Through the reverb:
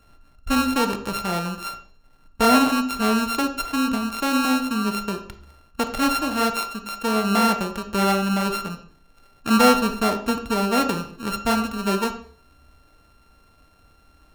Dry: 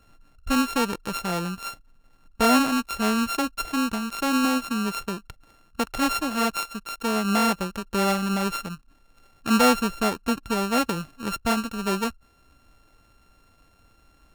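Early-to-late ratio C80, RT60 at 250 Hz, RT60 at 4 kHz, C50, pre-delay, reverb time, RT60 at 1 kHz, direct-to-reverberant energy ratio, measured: 14.0 dB, 0.65 s, 0.45 s, 10.0 dB, 3 ms, 0.50 s, 0.50 s, 6.0 dB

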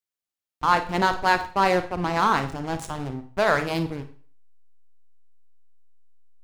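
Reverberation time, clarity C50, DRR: 0.45 s, 11.5 dB, 8.5 dB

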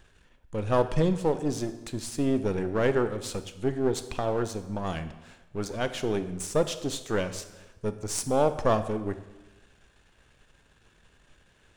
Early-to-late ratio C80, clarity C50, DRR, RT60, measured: 14.0 dB, 12.0 dB, 10.5 dB, 1.1 s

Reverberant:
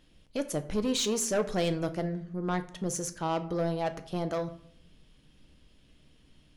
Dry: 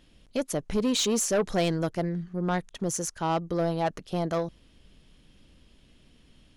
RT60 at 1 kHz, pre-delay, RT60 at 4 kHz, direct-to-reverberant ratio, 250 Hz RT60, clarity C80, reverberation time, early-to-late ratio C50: 0.60 s, 6 ms, 0.40 s, 8.5 dB, 0.85 s, 18.0 dB, 0.65 s, 14.5 dB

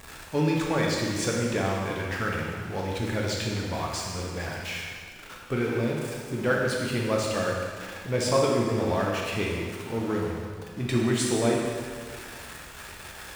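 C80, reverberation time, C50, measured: 2.0 dB, 1.9 s, 0.0 dB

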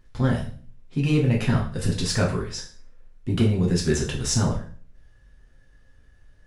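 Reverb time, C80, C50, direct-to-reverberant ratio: 0.45 s, 13.0 dB, 8.0 dB, -2.0 dB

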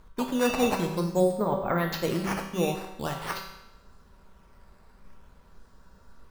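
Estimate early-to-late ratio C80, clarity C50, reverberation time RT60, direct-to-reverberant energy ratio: 7.5 dB, 5.5 dB, 0.95 s, 1.5 dB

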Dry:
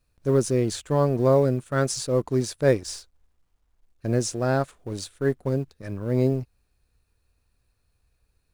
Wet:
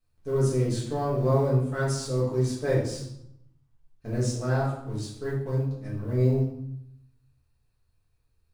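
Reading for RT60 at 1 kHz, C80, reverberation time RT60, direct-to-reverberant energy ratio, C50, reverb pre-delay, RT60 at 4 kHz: 0.80 s, 6.5 dB, 0.80 s, -7.5 dB, 3.0 dB, 5 ms, 0.55 s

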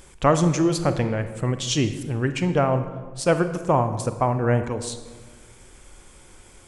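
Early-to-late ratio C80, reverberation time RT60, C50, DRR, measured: 12.5 dB, 1.4 s, 10.5 dB, 9.5 dB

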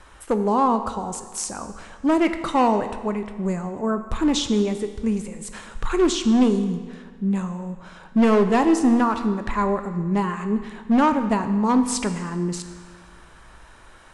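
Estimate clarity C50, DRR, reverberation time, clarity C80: 9.5 dB, 8.0 dB, 1.6 s, 11.0 dB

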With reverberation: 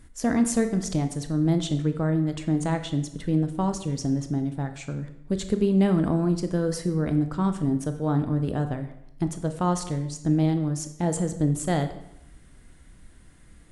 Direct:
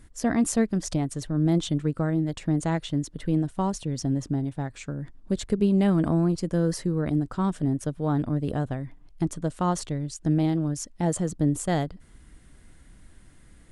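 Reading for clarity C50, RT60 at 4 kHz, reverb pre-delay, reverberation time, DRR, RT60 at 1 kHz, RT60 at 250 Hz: 10.5 dB, 0.65 s, 20 ms, 0.80 s, 7.5 dB, 0.85 s, 0.90 s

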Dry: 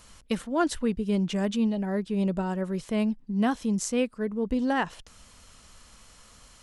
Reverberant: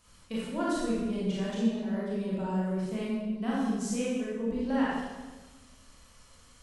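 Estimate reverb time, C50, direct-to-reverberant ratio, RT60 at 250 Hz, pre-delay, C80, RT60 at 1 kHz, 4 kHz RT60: 1.3 s, -3.0 dB, -8.0 dB, 1.7 s, 25 ms, 0.5 dB, 1.2 s, 1.0 s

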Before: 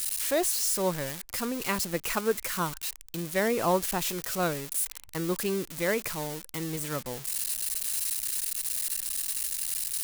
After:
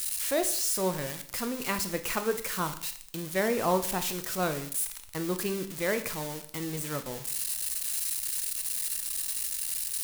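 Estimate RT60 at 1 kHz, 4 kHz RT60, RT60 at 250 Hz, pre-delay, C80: 0.55 s, 0.55 s, 0.55 s, 18 ms, 15.5 dB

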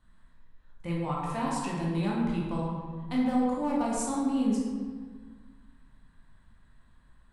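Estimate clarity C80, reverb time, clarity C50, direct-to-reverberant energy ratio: 2.0 dB, 1.6 s, -0.5 dB, -5.0 dB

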